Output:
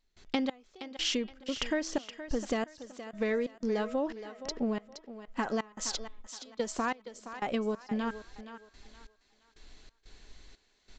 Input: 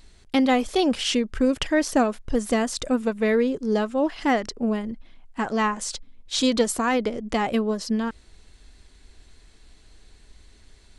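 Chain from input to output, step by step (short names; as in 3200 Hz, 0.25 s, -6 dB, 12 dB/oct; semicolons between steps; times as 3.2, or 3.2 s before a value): bell 77 Hz -8 dB 2.1 oct; de-hum 321.9 Hz, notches 11; compressor, threshold -28 dBFS, peak gain reduction 11.5 dB; step gate ".xx...xx.xxx." 91 bpm -24 dB; on a send: thinning echo 0.47 s, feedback 32%, high-pass 330 Hz, level -11 dB; on the sum: downsampling 16000 Hz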